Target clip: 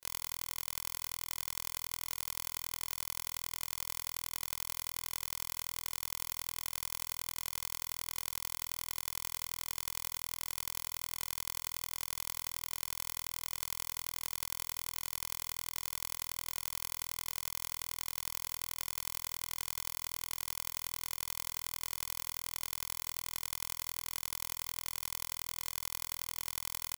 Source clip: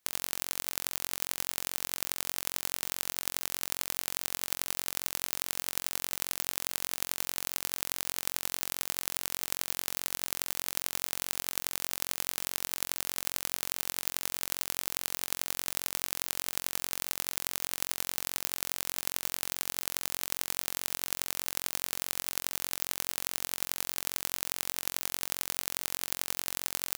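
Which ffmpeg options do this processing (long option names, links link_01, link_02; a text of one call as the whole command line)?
ffmpeg -i in.wav -af "afftfilt=real='re':imag='-im':win_size=2048:overlap=0.75,aecho=1:1:2:0.75,volume=-2.5dB" out.wav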